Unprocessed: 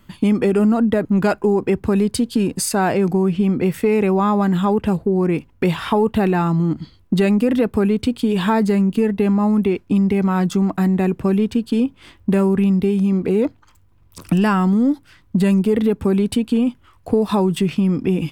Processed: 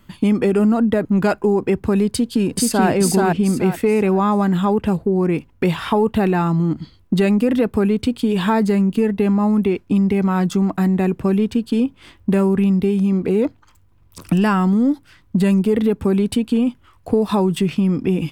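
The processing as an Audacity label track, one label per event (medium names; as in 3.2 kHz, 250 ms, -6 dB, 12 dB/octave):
2.080000	2.890000	echo throw 430 ms, feedback 30%, level -1 dB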